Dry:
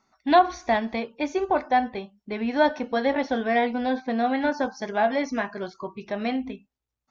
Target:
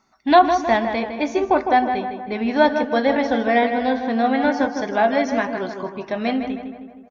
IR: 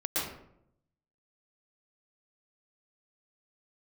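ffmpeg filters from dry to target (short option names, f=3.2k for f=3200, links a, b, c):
-filter_complex "[0:a]asplit=2[a][b];[b]adelay=157,lowpass=f=2.6k:p=1,volume=-7dB,asplit=2[c][d];[d]adelay=157,lowpass=f=2.6k:p=1,volume=0.55,asplit=2[e][f];[f]adelay=157,lowpass=f=2.6k:p=1,volume=0.55,asplit=2[g][h];[h]adelay=157,lowpass=f=2.6k:p=1,volume=0.55,asplit=2[i][j];[j]adelay=157,lowpass=f=2.6k:p=1,volume=0.55,asplit=2[k][l];[l]adelay=157,lowpass=f=2.6k:p=1,volume=0.55,asplit=2[m][n];[n]adelay=157,lowpass=f=2.6k:p=1,volume=0.55[o];[a][c][e][g][i][k][m][o]amix=inputs=8:normalize=0,volume=4.5dB"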